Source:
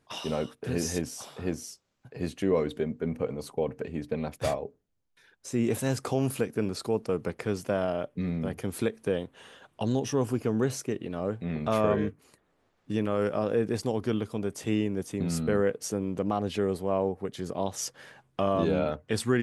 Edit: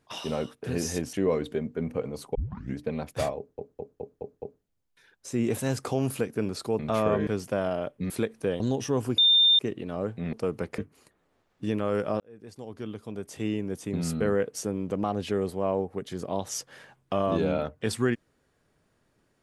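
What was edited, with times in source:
1.13–2.38 cut
3.6 tape start 0.43 s
4.62 stutter 0.21 s, 6 plays
6.99–7.44 swap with 11.57–12.05
8.27–8.73 cut
9.23–9.84 cut
10.42–10.83 bleep 3610 Hz -16 dBFS
13.47–15.19 fade in linear

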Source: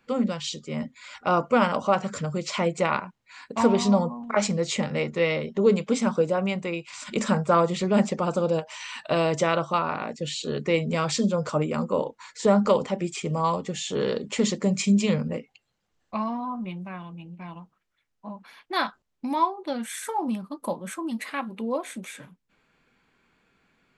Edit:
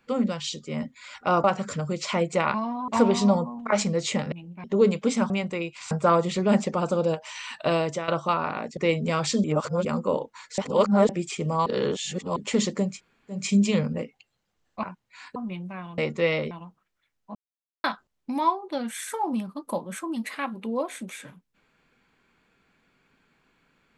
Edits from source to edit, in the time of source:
1.44–1.89 cut
2.99–3.52 swap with 16.18–16.52
4.96–5.49 swap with 17.14–17.46
6.15–6.42 cut
7.03–7.36 cut
9.18–9.53 fade out, to -12.5 dB
10.22–10.62 cut
11.29–11.7 reverse
12.43–12.94 reverse
13.51–14.21 reverse
14.74 insert room tone 0.50 s, crossfade 0.24 s
18.3–18.79 mute

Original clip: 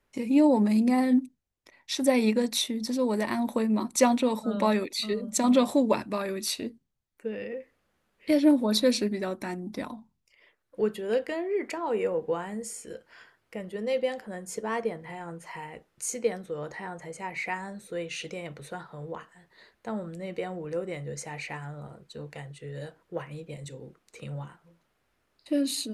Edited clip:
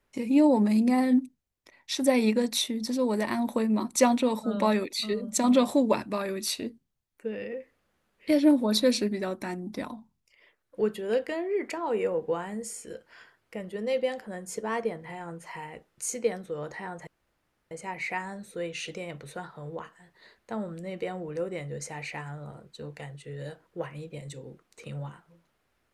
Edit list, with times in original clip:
17.07 insert room tone 0.64 s

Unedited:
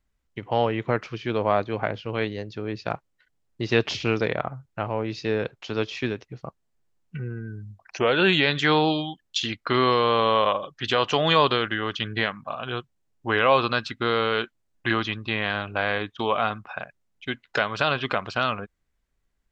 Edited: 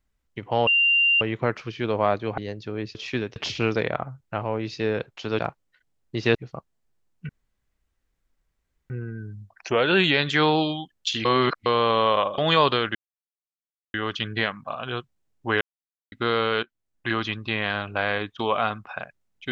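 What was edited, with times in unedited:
0.67 add tone 2780 Hz -16 dBFS 0.54 s
1.84–2.28 cut
2.85–3.81 swap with 5.84–6.25
7.19 insert room tone 1.61 s
9.54–9.95 reverse
10.67–11.17 cut
11.74 insert silence 0.99 s
13.41–13.92 mute
14.43–15.1 fade in, from -14.5 dB

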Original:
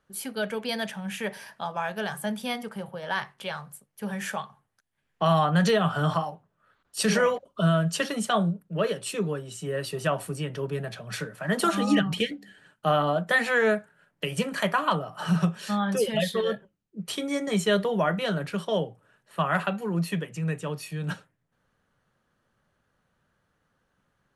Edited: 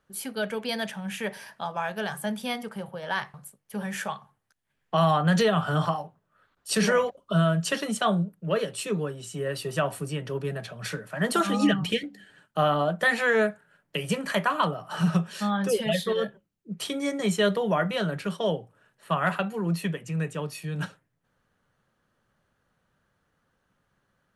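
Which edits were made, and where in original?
3.34–3.62 cut

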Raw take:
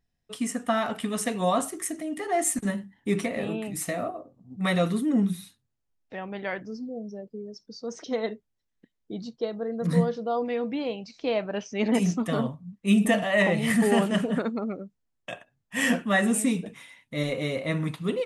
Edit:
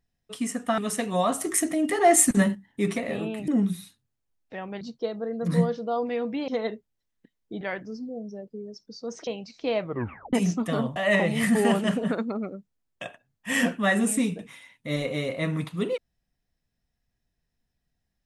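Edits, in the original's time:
0.78–1.06 cut
1.69–2.83 gain +7.5 dB
3.76–5.08 cut
6.41–8.07 swap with 9.2–10.87
11.4 tape stop 0.53 s
12.56–13.23 cut

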